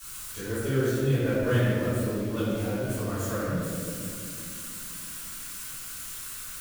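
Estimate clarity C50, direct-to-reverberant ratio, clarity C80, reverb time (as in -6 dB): -4.5 dB, -16.0 dB, -1.5 dB, 2.6 s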